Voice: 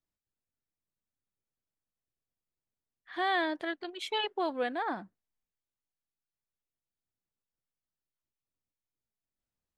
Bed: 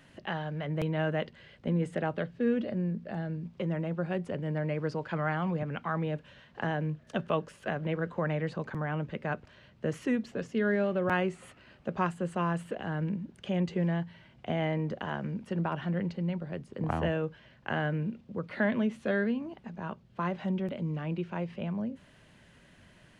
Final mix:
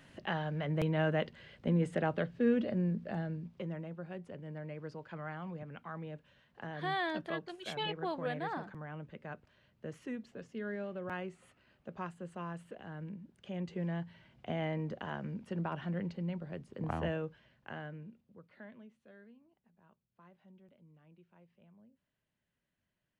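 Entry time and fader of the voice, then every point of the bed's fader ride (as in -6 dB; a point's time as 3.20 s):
3.65 s, -5.5 dB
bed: 3.11 s -1 dB
3.99 s -12 dB
13.35 s -12 dB
14.09 s -5.5 dB
17.14 s -5.5 dB
19.05 s -28.5 dB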